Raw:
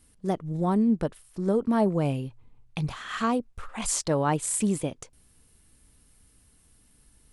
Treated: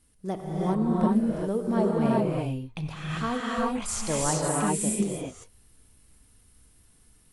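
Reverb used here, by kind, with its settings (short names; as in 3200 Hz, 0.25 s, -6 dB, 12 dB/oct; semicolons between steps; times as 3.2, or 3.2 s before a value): non-linear reverb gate 0.42 s rising, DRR -4 dB; gain -4.5 dB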